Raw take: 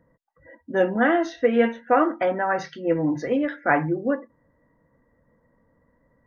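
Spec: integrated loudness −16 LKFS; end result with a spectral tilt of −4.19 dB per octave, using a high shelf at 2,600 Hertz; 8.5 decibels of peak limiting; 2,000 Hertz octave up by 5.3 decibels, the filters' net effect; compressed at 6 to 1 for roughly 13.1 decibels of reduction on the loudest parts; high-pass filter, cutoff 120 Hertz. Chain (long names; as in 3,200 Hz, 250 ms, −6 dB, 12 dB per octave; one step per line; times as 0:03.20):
high-pass filter 120 Hz
parametric band 2,000 Hz +4.5 dB
high-shelf EQ 2,600 Hz +6 dB
downward compressor 6 to 1, threshold −27 dBFS
level +18.5 dB
brickwall limiter −6 dBFS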